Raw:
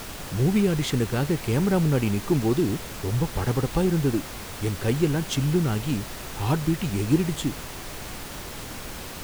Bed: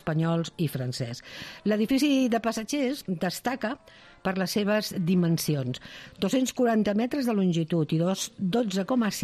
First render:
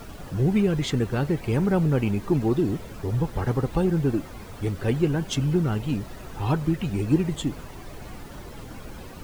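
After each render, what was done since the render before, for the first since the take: noise reduction 12 dB, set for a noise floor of -37 dBFS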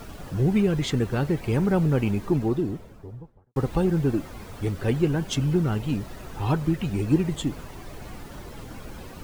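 2.10–3.56 s: studio fade out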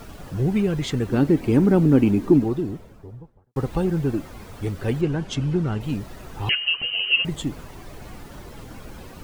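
1.08–2.44 s: peaking EQ 280 Hz +14 dB; 5.01–5.81 s: distance through air 54 m; 6.49–7.25 s: frequency inversion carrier 3 kHz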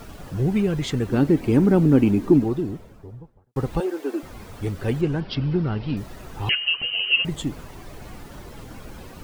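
3.80–4.23 s: steep high-pass 290 Hz 48 dB/octave; 5.20–5.97 s: careless resampling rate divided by 4×, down none, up filtered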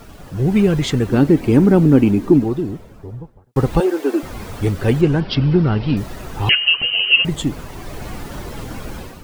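level rider gain up to 10 dB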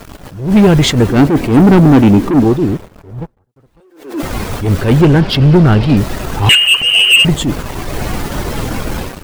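waveshaping leveller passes 3; attacks held to a fixed rise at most 110 dB/s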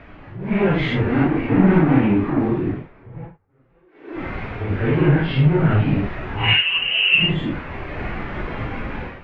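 phase randomisation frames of 200 ms; four-pole ladder low-pass 2.6 kHz, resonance 45%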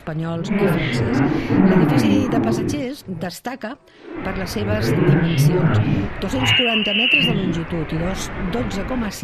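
add bed +1 dB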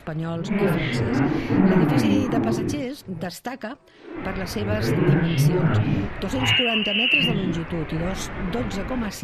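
trim -3.5 dB

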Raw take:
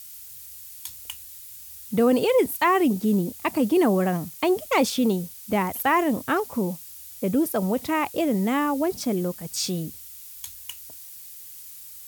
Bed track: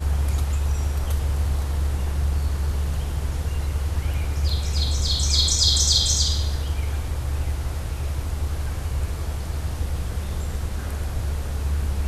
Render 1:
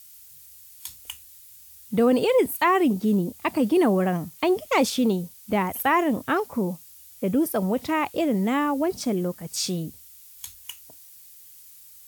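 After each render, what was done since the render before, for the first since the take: noise print and reduce 6 dB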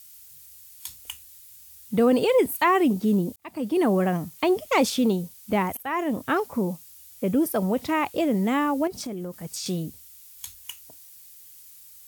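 3.36–3.95 s: fade in; 5.77–6.45 s: fade in equal-power, from -18.5 dB; 8.87–9.66 s: compression 12:1, threshold -29 dBFS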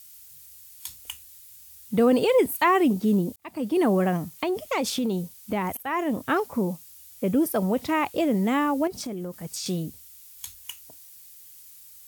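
4.29–5.80 s: compression, threshold -22 dBFS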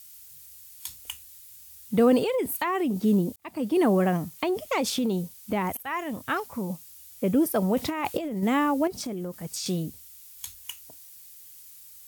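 2.21–3.02 s: compression, threshold -23 dBFS; 5.85–6.70 s: peaking EQ 370 Hz -8.5 dB 2.3 oct; 7.76–8.43 s: compressor with a negative ratio -27 dBFS, ratio -0.5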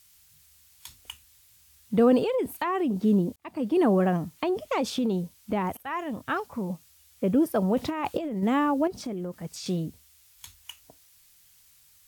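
low-pass 3.2 kHz 6 dB/octave; dynamic bell 2.1 kHz, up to -5 dB, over -52 dBFS, Q 5.4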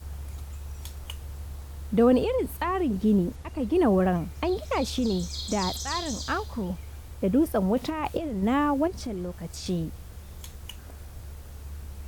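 add bed track -15.5 dB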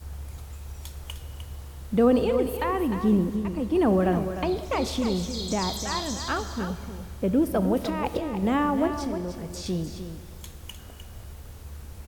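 on a send: delay 304 ms -9 dB; on the sum: Schroeder reverb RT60 2.5 s, combs from 26 ms, DRR 11.5 dB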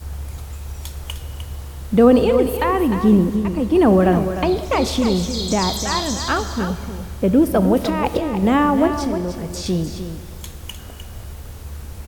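trim +8 dB

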